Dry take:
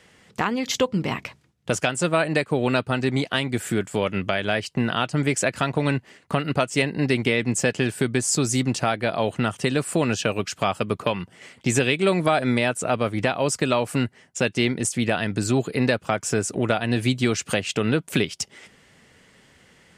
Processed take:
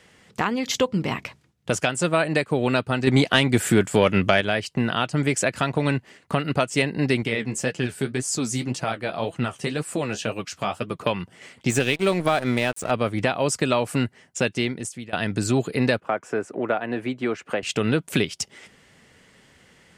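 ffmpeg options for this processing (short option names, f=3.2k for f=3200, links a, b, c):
-filter_complex "[0:a]asettb=1/sr,asplit=3[a][b][c];[a]atrim=end=3.074[d];[b]atrim=start=3.07:end=4.41,asetpts=PTS-STARTPTS,afade=t=in:d=0.004:c=qsin,afade=t=out:st=1.336:d=0.004:c=qsin,acontrast=57[e];[c]atrim=start=4.406[f];[d][e]acrossfade=d=0.004:c1=hsin:c2=qsin[g];[g][f]acrossfade=d=0.004:c1=qsin:c2=hsin,asettb=1/sr,asplit=3[h][i][j];[h]atrim=end=7.234[k];[i]atrim=start=7.23:end=11.01,asetpts=PTS-STARTPTS,afade=t=in:d=0.004:c=qsin,afade=t=out:st=3.776:d=0.004:c=qsin,flanger=delay=5.8:depth=9.1:regen=38:speed=1.9:shape=sinusoidal[l];[j]atrim=start=11.006[m];[k][l]acrossfade=d=0.004:c1=hsin:c2=qsin[n];[n][m]acrossfade=d=0.004:c1=qsin:c2=hsin,asettb=1/sr,asplit=3[o][p][q];[o]atrim=end=11.704[r];[p]atrim=start=11.7:end=12.91,asetpts=PTS-STARTPTS,afade=t=in:d=0.004:c=qsin,afade=t=out:st=1.206:d=0.004:c=qsin,aeval=exprs='sgn(val(0))*max(abs(val(0))-0.02,0)':c=same[s];[q]atrim=start=12.906[t];[r][s]acrossfade=d=0.004:c1=hsin:c2=qsin[u];[u][t]acrossfade=d=0.004:c1=qsin:c2=hsin,asettb=1/sr,asplit=3[v][w][x];[v]atrim=end=16.004[y];[w]atrim=start=16:end=17.63,asetpts=PTS-STARTPTS,afade=t=in:d=0.004:c=qsin,afade=t=out:st=1.626:d=0.004:c=qsin,acrossover=split=250 2200:gain=0.158 1 0.1[z][aa][ab];[z][aa][ab]amix=inputs=3:normalize=0[ac];[x]atrim=start=17.626[ad];[y][ac]acrossfade=d=0.004:c1=hsin:c2=qsin[ae];[ae][ad]acrossfade=d=0.004:c1=qsin:c2=hsin,asplit=2[af][ag];[af]atrim=end=15.13,asetpts=PTS-STARTPTS,afade=t=out:st=14.4:d=0.73:silence=0.0841395[ah];[ag]atrim=start=15.13,asetpts=PTS-STARTPTS,afade=t=in:d=0.004:c=hsin:silence=0.0841395[ai];[ah][ai]concat=n=2:v=0:a=1"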